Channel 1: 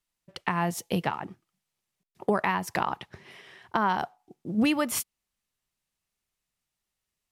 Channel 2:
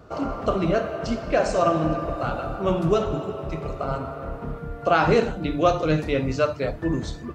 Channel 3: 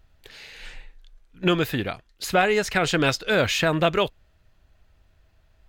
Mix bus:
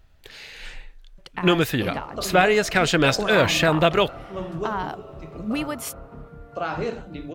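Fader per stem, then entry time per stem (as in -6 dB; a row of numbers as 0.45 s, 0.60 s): -3.0 dB, -9.0 dB, +2.5 dB; 0.90 s, 1.70 s, 0.00 s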